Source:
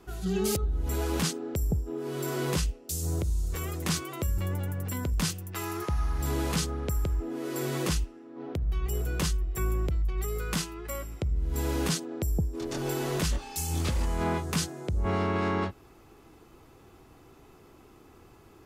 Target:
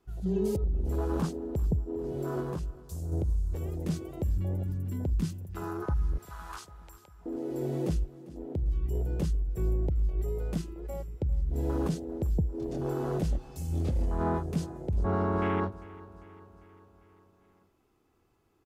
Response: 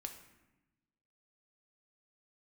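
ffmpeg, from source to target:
-filter_complex "[0:a]afwtdn=0.0251,asettb=1/sr,asplit=3[link_01][link_02][link_03];[link_01]atrim=end=2.404[link_04];[link_02]atrim=start=2.4:end=3.12,asetpts=PTS-STARTPTS,afade=type=in:duration=0.004:curve=qsin,afade=type=out:start_time=0.716:duration=0.004:curve=qsin,acompressor=threshold=-34dB:ratio=2.5[link_05];[link_03]atrim=start=3.116[link_06];[link_04][link_05]acrossfade=duration=0.004:curve1=hsin:curve2=qsin[link_07];[link_07][link_06]acrossfade=duration=0.004:curve1=qsin:curve2=hsin,asettb=1/sr,asplit=3[link_08][link_09][link_10];[link_08]atrim=end=6.184[link_11];[link_09]atrim=start=6.18:end=7.26,asetpts=PTS-STARTPTS,afade=type=in:duration=0.004:curve=qsin,afade=type=out:start_time=1.076:duration=0.004:curve=qsin,highpass=frequency=1000:width=0.5412,highpass=frequency=1000:width=1.3066[link_12];[link_10]atrim=start=7.256[link_13];[link_11][link_12]acrossfade=duration=0.004:curve1=hsin:curve2=qsin[link_14];[link_14][link_13]acrossfade=duration=0.004:curve1=qsin:curve2=hsin,aecho=1:1:398|796|1194|1592|1990:0.112|0.0662|0.0391|0.023|0.0136"

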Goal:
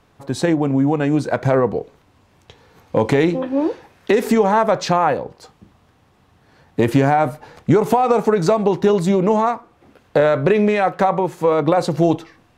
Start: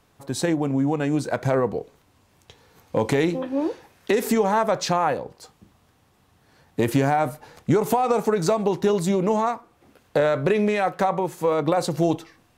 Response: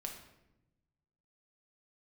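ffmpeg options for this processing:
-af "highshelf=frequency=6100:gain=-11.5,volume=5.5dB"

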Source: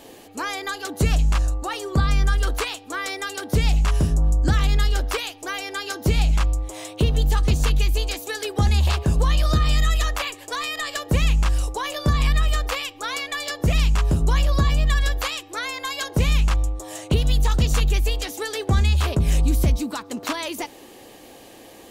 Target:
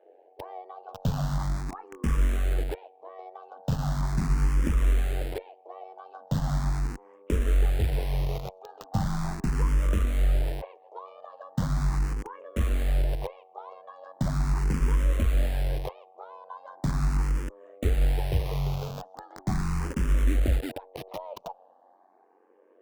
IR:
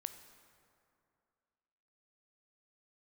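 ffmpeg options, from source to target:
-filter_complex "[0:a]acrossover=split=410[link_01][link_02];[link_01]acrusher=bits=4:mix=0:aa=0.000001[link_03];[link_02]asuperpass=centerf=600:order=4:qfactor=1.1[link_04];[link_03][link_04]amix=inputs=2:normalize=0,tremolo=f=96:d=0.788,asetrate=42336,aresample=44100,asplit=2[link_05][link_06];[link_06]afreqshift=0.39[link_07];[link_05][link_07]amix=inputs=2:normalize=1"

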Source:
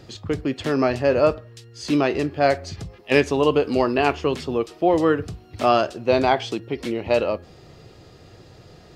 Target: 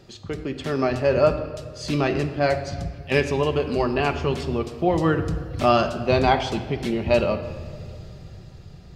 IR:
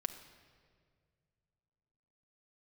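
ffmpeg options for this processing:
-filter_complex "[0:a]dynaudnorm=framelen=230:gausssize=9:maxgain=11.5dB,asubboost=boost=4.5:cutoff=170[link_01];[1:a]atrim=start_sample=2205[link_02];[link_01][link_02]afir=irnorm=-1:irlink=0,volume=-3.5dB"

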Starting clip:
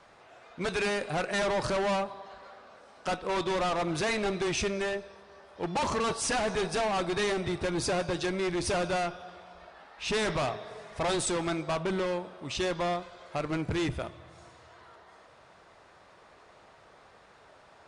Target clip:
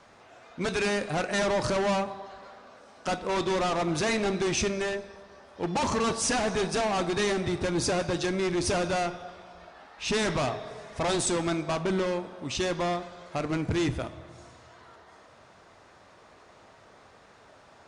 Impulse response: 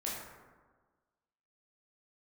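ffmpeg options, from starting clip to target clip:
-filter_complex "[0:a]equalizer=frequency=100:width_type=o:width=0.67:gain=4,equalizer=frequency=250:width_type=o:width=0.67:gain=5,equalizer=frequency=6300:width_type=o:width=0.67:gain=4,asplit=2[link_01][link_02];[1:a]atrim=start_sample=2205[link_03];[link_02][link_03]afir=irnorm=-1:irlink=0,volume=-14.5dB[link_04];[link_01][link_04]amix=inputs=2:normalize=0"

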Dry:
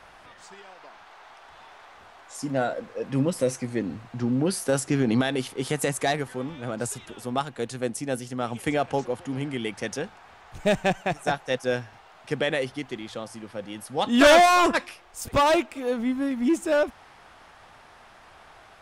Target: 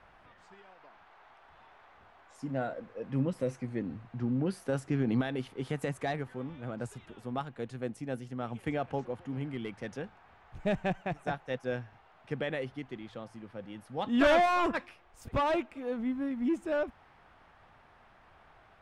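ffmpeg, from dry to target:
ffmpeg -i in.wav -filter_complex "[0:a]asettb=1/sr,asplit=3[link_01][link_02][link_03];[link_01]atrim=end=9.514[link_04];[link_02]atrim=start=9.51:end=9.95,asetpts=PTS-STARTPTS,afade=type=in:duration=0.004:curve=qsin,afade=type=out:start_time=0.436:duration=0.004:curve=qsin,aeval=exprs='clip(val(0),-1,0.0841)':channel_layout=same[link_05];[link_03]atrim=start=9.946[link_06];[link_04][link_05]acrossfade=duration=0.004:curve1=hsin:curve2=qsin[link_07];[link_07][link_06]acrossfade=duration=0.004:curve1=qsin:curve2=hsin,bass=frequency=250:gain=5,treble=frequency=4000:gain=-13,volume=-9dB" out.wav

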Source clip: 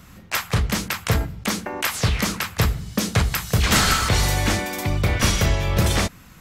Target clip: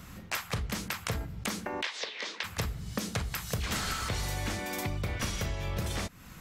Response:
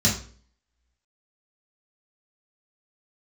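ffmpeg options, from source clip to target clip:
-filter_complex "[0:a]acompressor=threshold=-30dB:ratio=5,asplit=3[link_01][link_02][link_03];[link_01]afade=type=out:start_time=1.81:duration=0.02[link_04];[link_02]highpass=frequency=380:width=0.5412,highpass=frequency=380:width=1.3066,equalizer=frequency=730:width_type=q:width=4:gain=-5,equalizer=frequency=1300:width_type=q:width=4:gain=-8,equalizer=frequency=1900:width_type=q:width=4:gain=3,equalizer=frequency=3600:width_type=q:width=4:gain=6,lowpass=frequency=5600:width=0.5412,lowpass=frequency=5600:width=1.3066,afade=type=in:start_time=1.81:duration=0.02,afade=type=out:start_time=2.43:duration=0.02[link_05];[link_03]afade=type=in:start_time=2.43:duration=0.02[link_06];[link_04][link_05][link_06]amix=inputs=3:normalize=0,volume=-1.5dB"

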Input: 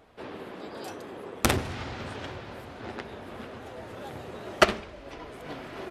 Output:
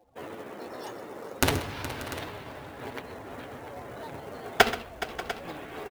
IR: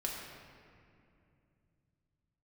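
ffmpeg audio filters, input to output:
-af "afftdn=noise_reduction=22:noise_floor=-51,adynamicequalizer=threshold=0.00501:dfrequency=130:dqfactor=0.71:tfrequency=130:tqfactor=0.71:attack=5:release=100:ratio=0.375:range=4:mode=cutabove:tftype=bell,asetrate=49501,aresample=44100,atempo=0.890899,acrusher=bits=4:mode=log:mix=0:aa=0.000001,aecho=1:1:129|419|587|696:0.168|0.188|0.126|0.178"

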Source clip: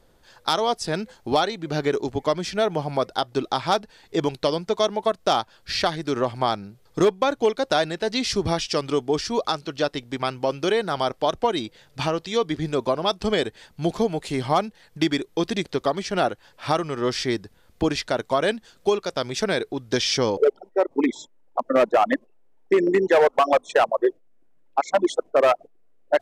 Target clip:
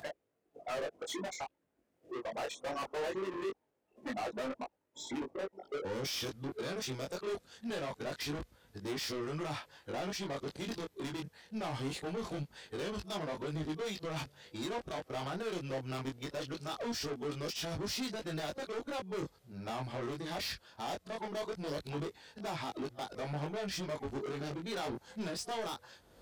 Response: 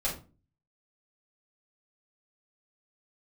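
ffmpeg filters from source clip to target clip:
-filter_complex "[0:a]areverse,acrossover=split=100[link_01][link_02];[link_02]alimiter=limit=-16.5dB:level=0:latency=1:release=65[link_03];[link_01][link_03]amix=inputs=2:normalize=0,acompressor=mode=upward:threshold=-43dB:ratio=2.5,asplit=2[link_04][link_05];[link_05]aeval=exprs='0.0447*(abs(mod(val(0)/0.0447+3,4)-2)-1)':channel_layout=same,volume=-4dB[link_06];[link_04][link_06]amix=inputs=2:normalize=0,highpass=frequency=44:width=0.5412,highpass=frequency=44:width=1.3066,asoftclip=type=tanh:threshold=-26.5dB,flanger=delay=19.5:depth=3.2:speed=0.22,volume=-5.5dB"

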